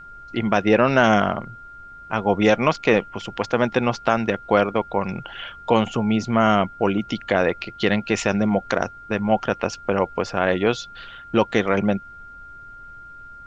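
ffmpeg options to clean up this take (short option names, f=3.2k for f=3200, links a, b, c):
-af "bandreject=f=1.4k:w=30,agate=range=-21dB:threshold=-33dB"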